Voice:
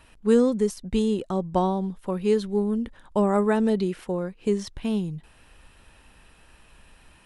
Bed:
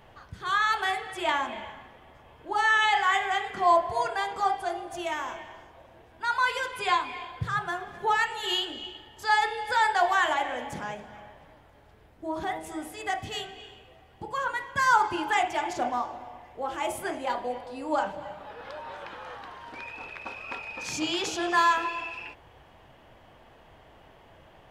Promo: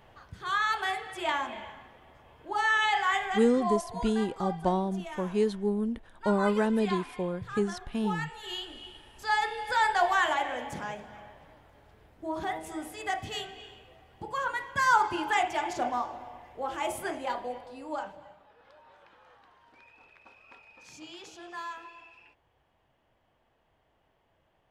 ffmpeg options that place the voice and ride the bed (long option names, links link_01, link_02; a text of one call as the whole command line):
ffmpeg -i stem1.wav -i stem2.wav -filter_complex "[0:a]adelay=3100,volume=-4.5dB[link_01];[1:a]volume=6dB,afade=type=out:start_time=3.14:duration=0.6:silence=0.421697,afade=type=in:start_time=8.44:duration=1.44:silence=0.354813,afade=type=out:start_time=17.04:duration=1.43:silence=0.16788[link_02];[link_01][link_02]amix=inputs=2:normalize=0" out.wav